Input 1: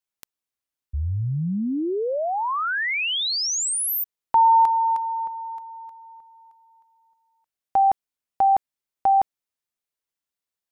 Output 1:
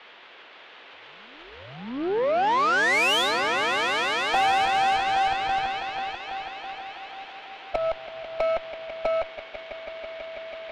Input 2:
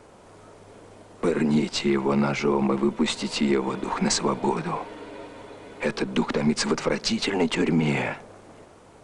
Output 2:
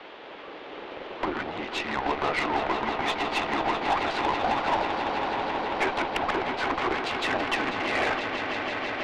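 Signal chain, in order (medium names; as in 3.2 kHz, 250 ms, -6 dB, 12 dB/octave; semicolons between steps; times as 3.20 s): recorder AGC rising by 5.3 dB/s; harmonic-percussive split percussive +7 dB; dynamic bell 970 Hz, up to +7 dB, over -33 dBFS, Q 1; compression 4:1, threshold -23 dBFS; saturation -20.5 dBFS; added noise white -42 dBFS; mistuned SSB -130 Hz 490–3500 Hz; on a send: echo with a slow build-up 164 ms, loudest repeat 5, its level -10 dB; on the sum: Chebyshev shaper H 4 -22 dB, 8 -25 dB, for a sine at -14.5 dBFS; trim +2 dB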